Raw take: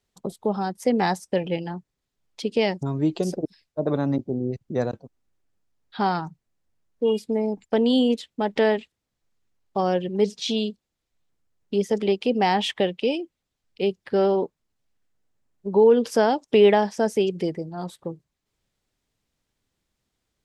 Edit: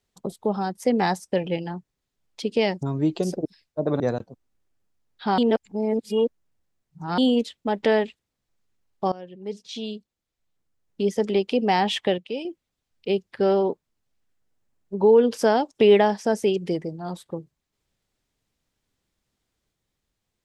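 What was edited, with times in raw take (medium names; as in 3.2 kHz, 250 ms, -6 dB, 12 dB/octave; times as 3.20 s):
4.00–4.73 s: delete
6.11–7.91 s: reverse
9.85–11.86 s: fade in, from -20 dB
12.91–13.18 s: gain -7 dB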